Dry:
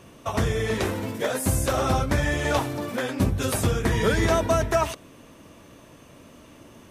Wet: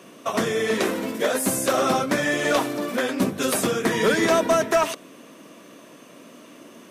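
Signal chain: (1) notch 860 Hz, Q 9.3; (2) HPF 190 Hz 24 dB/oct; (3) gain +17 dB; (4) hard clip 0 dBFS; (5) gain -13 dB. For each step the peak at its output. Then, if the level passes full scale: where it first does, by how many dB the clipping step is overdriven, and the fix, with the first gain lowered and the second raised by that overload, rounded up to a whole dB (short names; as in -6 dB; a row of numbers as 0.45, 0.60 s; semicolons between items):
-9.5, -10.5, +6.5, 0.0, -13.0 dBFS; step 3, 6.5 dB; step 3 +10 dB, step 5 -6 dB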